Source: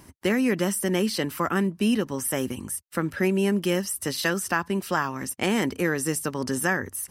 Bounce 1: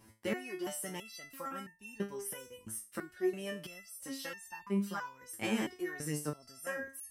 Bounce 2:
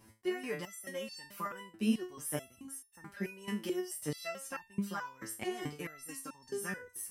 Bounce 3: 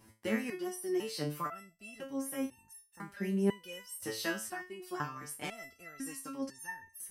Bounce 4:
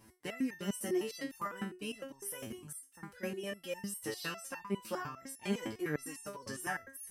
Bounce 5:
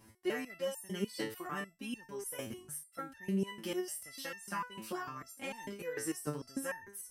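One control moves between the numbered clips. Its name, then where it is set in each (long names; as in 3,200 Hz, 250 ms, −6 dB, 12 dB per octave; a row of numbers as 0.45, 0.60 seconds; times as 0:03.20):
step-sequenced resonator, speed: 3, 4.6, 2, 9.9, 6.7 Hertz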